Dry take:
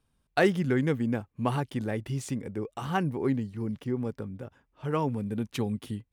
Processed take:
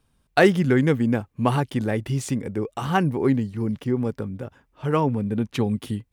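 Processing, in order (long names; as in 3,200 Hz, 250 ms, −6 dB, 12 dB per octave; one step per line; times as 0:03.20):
0:04.99–0:05.70: high-shelf EQ 3,800 Hz → 6,000 Hz −8.5 dB
level +7 dB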